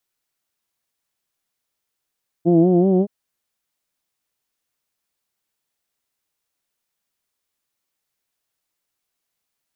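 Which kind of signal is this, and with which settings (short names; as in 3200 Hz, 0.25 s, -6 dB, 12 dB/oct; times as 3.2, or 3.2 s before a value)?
formant vowel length 0.62 s, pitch 165 Hz, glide +3 st, vibrato depth 0.8 st, F1 310 Hz, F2 680 Hz, F3 3100 Hz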